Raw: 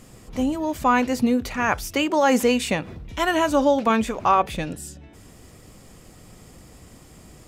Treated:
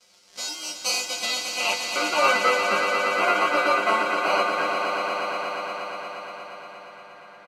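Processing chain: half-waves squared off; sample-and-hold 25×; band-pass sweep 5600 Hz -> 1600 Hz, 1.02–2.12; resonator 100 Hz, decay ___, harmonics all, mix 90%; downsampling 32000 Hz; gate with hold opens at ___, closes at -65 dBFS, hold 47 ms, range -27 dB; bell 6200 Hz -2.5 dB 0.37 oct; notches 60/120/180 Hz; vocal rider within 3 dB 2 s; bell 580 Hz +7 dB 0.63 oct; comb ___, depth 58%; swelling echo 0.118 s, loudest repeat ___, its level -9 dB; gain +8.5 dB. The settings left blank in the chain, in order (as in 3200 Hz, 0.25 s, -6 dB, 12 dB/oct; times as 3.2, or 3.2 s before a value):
0.2 s, -57 dBFS, 5.6 ms, 5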